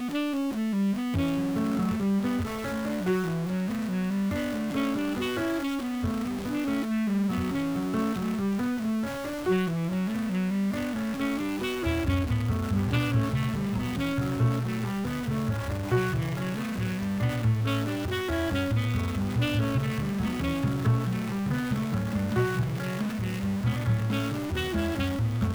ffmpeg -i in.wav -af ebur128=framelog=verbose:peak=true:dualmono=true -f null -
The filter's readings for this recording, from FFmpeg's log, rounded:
Integrated loudness:
  I:         -25.4 LUFS
  Threshold: -35.3 LUFS
Loudness range:
  LRA:         1.2 LU
  Threshold: -45.4 LUFS
  LRA low:   -25.9 LUFS
  LRA high:  -24.7 LUFS
True peak:
  Peak:      -15.8 dBFS